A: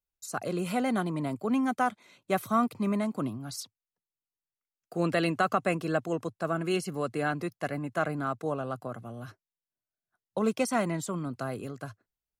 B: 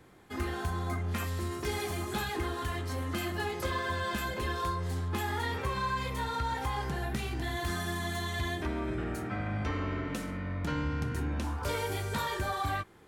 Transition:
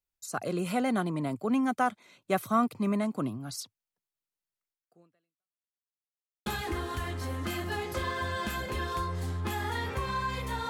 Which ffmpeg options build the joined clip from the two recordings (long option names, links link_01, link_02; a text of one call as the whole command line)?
ffmpeg -i cue0.wav -i cue1.wav -filter_complex "[0:a]apad=whole_dur=10.69,atrim=end=10.69,asplit=2[link_01][link_02];[link_01]atrim=end=5.65,asetpts=PTS-STARTPTS,afade=type=out:start_time=4.7:duration=0.95:curve=exp[link_03];[link_02]atrim=start=5.65:end=6.46,asetpts=PTS-STARTPTS,volume=0[link_04];[1:a]atrim=start=2.14:end=6.37,asetpts=PTS-STARTPTS,afade=type=in:duration=0.004:curve=hsin[link_05];[link_03][link_04][link_05]concat=n=3:v=0:a=1" out.wav